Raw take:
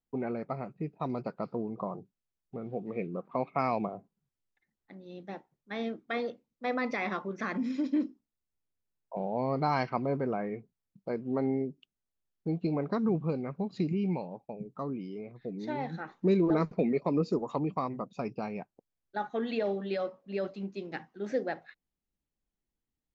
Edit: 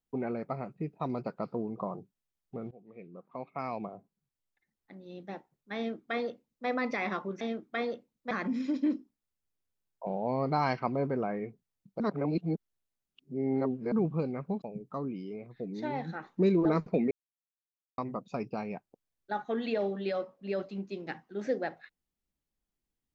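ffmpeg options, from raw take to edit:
ffmpeg -i in.wav -filter_complex "[0:a]asplit=9[link_01][link_02][link_03][link_04][link_05][link_06][link_07][link_08][link_09];[link_01]atrim=end=2.71,asetpts=PTS-STARTPTS,afade=type=out:start_time=2.706:duration=0.004:curve=hsin:silence=0.0891251[link_10];[link_02]atrim=start=2.71:end=7.412,asetpts=PTS-STARTPTS,afade=type=in:duration=2.39:silence=0.0891251[link_11];[link_03]atrim=start=5.768:end=6.672[link_12];[link_04]atrim=start=7.408:end=11.102[link_13];[link_05]atrim=start=11.098:end=13.022,asetpts=PTS-STARTPTS,areverse[link_14];[link_06]atrim=start=13.018:end=13.722[link_15];[link_07]atrim=start=14.468:end=16.96,asetpts=PTS-STARTPTS,afade=type=out:start_time=2.488:duration=0.004:curve=hsin[link_16];[link_08]atrim=start=16.96:end=17.83,asetpts=PTS-STARTPTS,volume=0[link_17];[link_09]atrim=start=17.83,asetpts=PTS-STARTPTS,afade=type=in:duration=0.004:curve=hsin[link_18];[link_10][link_11]concat=n=2:v=0:a=1[link_19];[link_19][link_12]acrossfade=duration=0.004:curve1=hsin:curve2=hsin[link_20];[link_20][link_13]acrossfade=duration=0.004:curve1=hsin:curve2=hsin[link_21];[link_21][link_14]acrossfade=duration=0.004:curve1=hsin:curve2=hsin[link_22];[link_22][link_15]acrossfade=duration=0.004:curve1=hsin:curve2=hsin[link_23];[link_16][link_17][link_18]concat=n=3:v=0:a=1[link_24];[link_23][link_24]acrossfade=duration=0.004:curve1=hsin:curve2=hsin" out.wav

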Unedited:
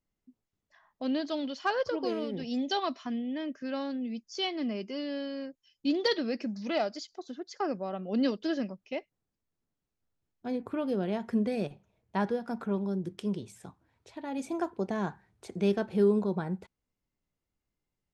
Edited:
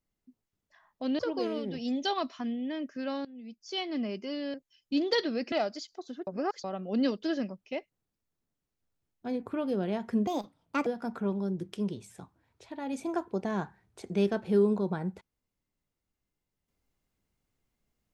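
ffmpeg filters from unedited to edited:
ffmpeg -i in.wav -filter_complex "[0:a]asplit=9[link_01][link_02][link_03][link_04][link_05][link_06][link_07][link_08][link_09];[link_01]atrim=end=1.192[link_10];[link_02]atrim=start=1.848:end=3.91,asetpts=PTS-STARTPTS,afade=type=out:start_time=2.058:duration=0.004:curve=hsin:silence=0.112202[link_11];[link_03]atrim=start=3.91:end=5.202,asetpts=PTS-STARTPTS,afade=type=in:duration=0.7:silence=0.112202[link_12];[link_04]atrim=start=5.468:end=6.452[link_13];[link_05]atrim=start=6.718:end=7.472[link_14];[link_06]atrim=start=7.468:end=7.842,asetpts=PTS-STARTPTS,areverse[link_15];[link_07]atrim=start=7.838:end=11.474[link_16];[link_08]atrim=start=11.47:end=12.32,asetpts=PTS-STARTPTS,asetrate=63063,aresample=44100,atrim=end_sample=26213,asetpts=PTS-STARTPTS[link_17];[link_09]atrim=start=12.316[link_18];[link_11][link_12]concat=n=2:v=0:a=1[link_19];[link_10][link_19]acrossfade=duration=0.004:curve1=hsin:curve2=hsin[link_20];[link_20][link_13]acrossfade=duration=0.004:curve1=hsin:curve2=hsin[link_21];[link_21][link_14]acrossfade=duration=0.004:curve1=hsin:curve2=hsin[link_22];[link_22][link_15]acrossfade=duration=0.004:curve1=hsin:curve2=hsin[link_23];[link_23][link_16]acrossfade=duration=0.004:curve1=hsin:curve2=hsin[link_24];[link_24][link_17]acrossfade=duration=0.004:curve1=hsin:curve2=hsin[link_25];[link_25][link_18]acrossfade=duration=0.004:curve1=hsin:curve2=hsin" out.wav

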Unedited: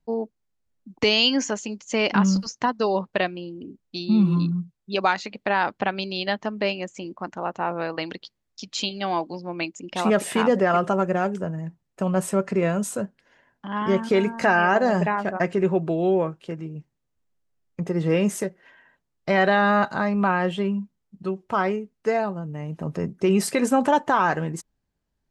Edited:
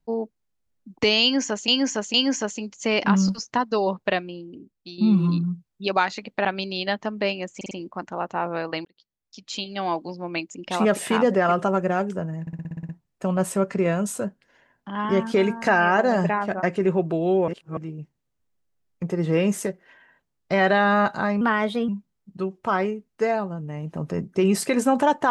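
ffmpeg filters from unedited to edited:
ffmpeg -i in.wav -filter_complex "[0:a]asplit=21[link_01][link_02][link_03][link_04][link_05][link_06][link_07][link_08][link_09][link_10][link_11][link_12][link_13][link_14][link_15][link_16][link_17][link_18][link_19][link_20][link_21];[link_01]atrim=end=1.682[link_22];[link_02]atrim=start=1.218:end=1.682[link_23];[link_03]atrim=start=1.218:end=4.06,asetpts=PTS-STARTPTS,afade=type=out:start_time=1.992:duration=0.85:silence=0.334965[link_24];[link_04]atrim=start=4.06:end=5.532,asetpts=PTS-STARTPTS,afade=type=in:duration=0.004:curve=hsin:silence=0.334965[link_25];[link_05]atrim=start=5.848:end=7.012[link_26];[link_06]atrim=start=6.958:end=7.012[link_27];[link_07]atrim=start=6.958:end=7.012[link_28];[link_08]atrim=start=6.958:end=8.1,asetpts=PTS-STARTPTS,afade=type=out:start_time=1.138:duration=0.004:curve=hsin[link_29];[link_09]atrim=start=8.1:end=11.722,asetpts=PTS-STARTPTS,afade=type=in:duration=1.12[link_30];[link_10]atrim=start=11.658:end=11.722[link_31];[link_11]atrim=start=11.658:end=11.722[link_32];[link_12]atrim=start=11.658:end=11.722[link_33];[link_13]atrim=start=11.658:end=11.722[link_34];[link_14]atrim=start=11.658:end=11.722[link_35];[link_15]atrim=start=11.658:end=11.722[link_36];[link_16]atrim=start=11.658:end=11.722[link_37];[link_17]atrim=start=11.658:end=16.252[link_38];[link_18]atrim=start=16.248:end=16.542,asetpts=PTS-STARTPTS,areverse[link_39];[link_19]atrim=start=16.538:end=20.184[link_40];[link_20]atrim=start=20.18:end=20.74,asetpts=PTS-STARTPTS,asetrate=52038,aresample=44100[link_41];[link_21]atrim=start=20.736[link_42];[link_22][link_23]acrossfade=duration=0.004:curve1=hsin:curve2=hsin[link_43];[link_24][link_25]concat=n=2:v=0:a=1[link_44];[link_43][link_44]acrossfade=duration=0.004:curve1=hsin:curve2=hsin[link_45];[link_45][link_26]acrossfade=duration=0.004:curve1=hsin:curve2=hsin[link_46];[link_46][link_27]acrossfade=duration=0.004:curve1=hsin:curve2=hsin[link_47];[link_47][link_28]acrossfade=duration=0.004:curve1=hsin:curve2=hsin[link_48];[link_29][link_30]concat=n=2:v=0:a=1[link_49];[link_48][link_49]acrossfade=duration=0.004:curve1=hsin:curve2=hsin[link_50];[link_50][link_31]acrossfade=duration=0.004:curve1=hsin:curve2=hsin[link_51];[link_51][link_32]acrossfade=duration=0.004:curve1=hsin:curve2=hsin[link_52];[link_52][link_33]acrossfade=duration=0.004:curve1=hsin:curve2=hsin[link_53];[link_53][link_34]acrossfade=duration=0.004:curve1=hsin:curve2=hsin[link_54];[link_54][link_35]acrossfade=duration=0.004:curve1=hsin:curve2=hsin[link_55];[link_55][link_36]acrossfade=duration=0.004:curve1=hsin:curve2=hsin[link_56];[link_56][link_37]acrossfade=duration=0.004:curve1=hsin:curve2=hsin[link_57];[link_57][link_38]acrossfade=duration=0.004:curve1=hsin:curve2=hsin[link_58];[link_58][link_39]acrossfade=duration=0.004:curve1=hsin:curve2=hsin[link_59];[link_59][link_40]acrossfade=duration=0.004:curve1=hsin:curve2=hsin[link_60];[link_60][link_41]acrossfade=duration=0.004:curve1=hsin:curve2=hsin[link_61];[link_61][link_42]acrossfade=duration=0.004:curve1=hsin:curve2=hsin" out.wav

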